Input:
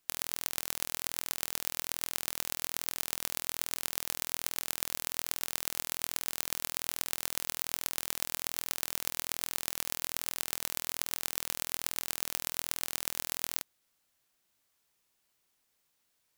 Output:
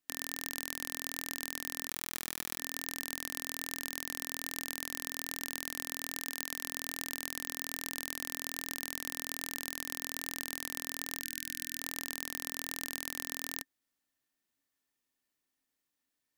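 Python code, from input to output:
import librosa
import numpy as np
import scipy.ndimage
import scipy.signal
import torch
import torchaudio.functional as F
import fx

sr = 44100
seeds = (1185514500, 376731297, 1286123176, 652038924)

y = fx.highpass(x, sr, hz=180.0, slope=12, at=(6.19, 6.63))
y = fx.leveller(y, sr, passes=2)
y = fx.small_body(y, sr, hz=(270.0, 1800.0), ring_ms=55, db=13)
y = fx.sample_gate(y, sr, floor_db=-40.5, at=(1.88, 2.59))
y = fx.brickwall_bandstop(y, sr, low_hz=300.0, high_hz=1500.0, at=(11.23, 11.8))
y = y * 10.0 ** (-6.0 / 20.0)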